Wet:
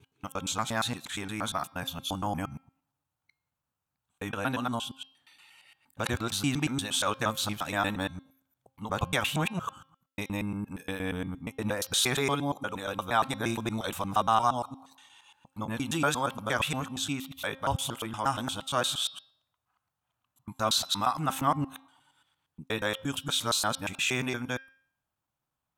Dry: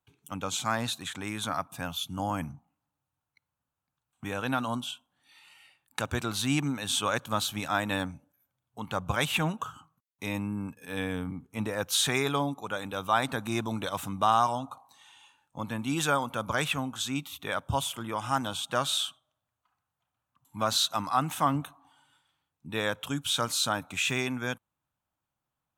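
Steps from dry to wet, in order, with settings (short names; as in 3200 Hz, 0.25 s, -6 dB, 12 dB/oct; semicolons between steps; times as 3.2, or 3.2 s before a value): local time reversal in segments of 0.117 s; de-hum 266.7 Hz, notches 21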